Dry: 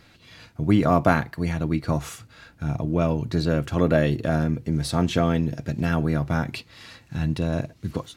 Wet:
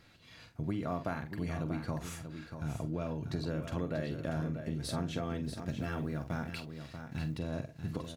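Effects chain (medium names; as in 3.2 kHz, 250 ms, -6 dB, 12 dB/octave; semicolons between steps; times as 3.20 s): 5.44–7.38 s: companding laws mixed up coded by A; doubling 45 ms -10 dB; compression, threshold -24 dBFS, peak gain reduction 11.5 dB; delay 638 ms -8.5 dB; trim -8 dB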